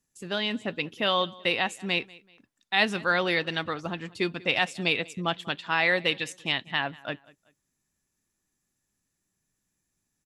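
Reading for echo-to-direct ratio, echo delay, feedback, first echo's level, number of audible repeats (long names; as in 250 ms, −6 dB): −22.5 dB, 191 ms, 35%, −23.0 dB, 2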